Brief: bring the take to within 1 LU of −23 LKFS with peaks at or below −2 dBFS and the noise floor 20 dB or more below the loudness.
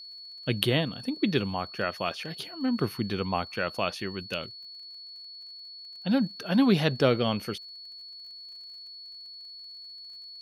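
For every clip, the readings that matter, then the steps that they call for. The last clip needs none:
crackle rate 40 per second; interfering tone 4,400 Hz; level of the tone −42 dBFS; integrated loudness −28.5 LKFS; sample peak −4.5 dBFS; target loudness −23.0 LKFS
→ click removal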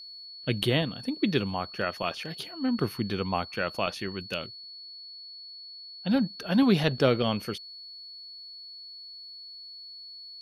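crackle rate 0.19 per second; interfering tone 4,400 Hz; level of the tone −42 dBFS
→ notch filter 4,400 Hz, Q 30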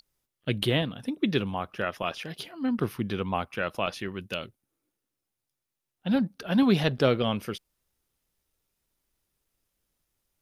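interfering tone none found; integrated loudness −28.5 LKFS; sample peak −8.0 dBFS; target loudness −23.0 LKFS
→ level +5.5 dB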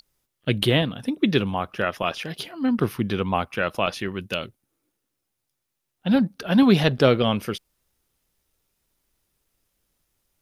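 integrated loudness −23.0 LKFS; sample peak −2.5 dBFS; background noise floor −80 dBFS

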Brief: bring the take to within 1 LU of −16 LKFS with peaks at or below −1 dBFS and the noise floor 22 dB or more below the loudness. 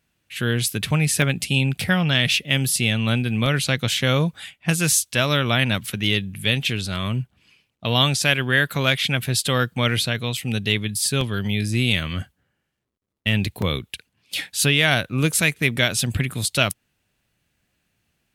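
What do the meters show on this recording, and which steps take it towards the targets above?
number of dropouts 5; longest dropout 2.5 ms; integrated loudness −21.0 LKFS; sample peak −4.0 dBFS; target loudness −16.0 LKFS
→ repair the gap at 0:01.22/0:03.46/0:10.37/0:11.21/0:13.62, 2.5 ms
level +5 dB
brickwall limiter −1 dBFS

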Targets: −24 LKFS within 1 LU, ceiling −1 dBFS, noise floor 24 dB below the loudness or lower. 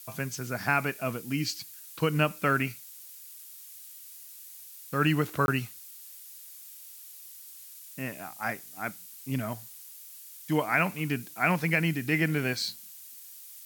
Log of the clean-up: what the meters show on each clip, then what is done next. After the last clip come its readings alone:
number of dropouts 1; longest dropout 21 ms; background noise floor −48 dBFS; target noise floor −54 dBFS; integrated loudness −29.5 LKFS; sample peak −10.5 dBFS; target loudness −24.0 LKFS
→ repair the gap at 0:05.46, 21 ms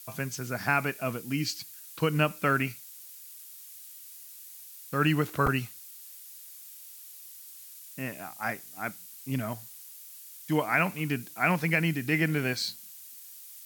number of dropouts 0; background noise floor −48 dBFS; target noise floor −54 dBFS
→ noise reduction from a noise print 6 dB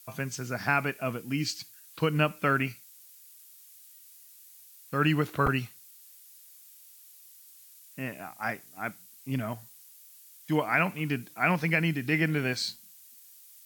background noise floor −54 dBFS; integrated loudness −29.5 LKFS; sample peak −10.5 dBFS; target loudness −24.0 LKFS
→ level +5.5 dB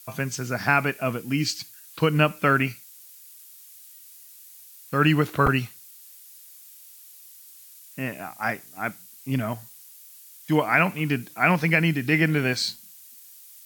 integrated loudness −24.0 LKFS; sample peak −5.0 dBFS; background noise floor −48 dBFS

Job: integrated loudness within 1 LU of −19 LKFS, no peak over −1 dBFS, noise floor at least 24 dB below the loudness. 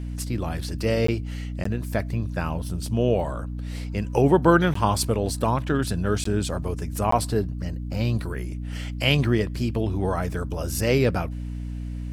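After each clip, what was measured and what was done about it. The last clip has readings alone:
number of dropouts 5; longest dropout 14 ms; mains hum 60 Hz; hum harmonics up to 300 Hz; level of the hum −29 dBFS; integrated loudness −25.0 LKFS; sample peak −5.5 dBFS; target loudness −19.0 LKFS
→ repair the gap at 0:01.07/0:01.64/0:04.74/0:06.24/0:07.11, 14 ms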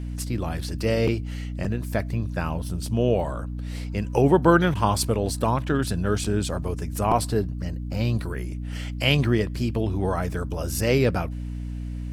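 number of dropouts 0; mains hum 60 Hz; hum harmonics up to 300 Hz; level of the hum −29 dBFS
→ mains-hum notches 60/120/180/240/300 Hz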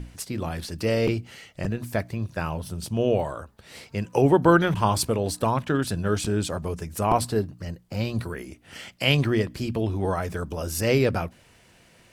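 mains hum none found; integrated loudness −25.5 LKFS; sample peak −5.0 dBFS; target loudness −19.0 LKFS
→ level +6.5 dB
brickwall limiter −1 dBFS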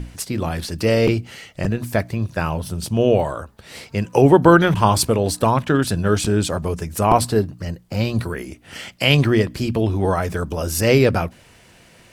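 integrated loudness −19.0 LKFS; sample peak −1.0 dBFS; background noise floor −50 dBFS

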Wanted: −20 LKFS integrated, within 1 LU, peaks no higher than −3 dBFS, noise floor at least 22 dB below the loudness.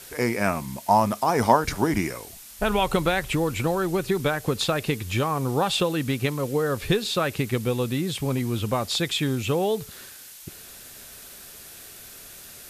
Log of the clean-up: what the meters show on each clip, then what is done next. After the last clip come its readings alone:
background noise floor −44 dBFS; target noise floor −47 dBFS; integrated loudness −24.5 LKFS; sample peak −4.0 dBFS; target loudness −20.0 LKFS
→ broadband denoise 6 dB, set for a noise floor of −44 dBFS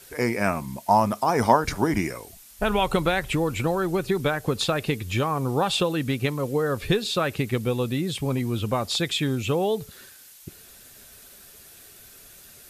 background noise floor −49 dBFS; integrated loudness −24.5 LKFS; sample peak −4.0 dBFS; target loudness −20.0 LKFS
→ level +4.5 dB
brickwall limiter −3 dBFS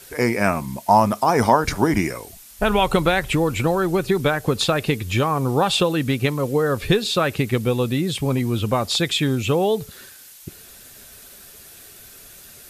integrated loudness −20.5 LKFS; sample peak −3.0 dBFS; background noise floor −44 dBFS

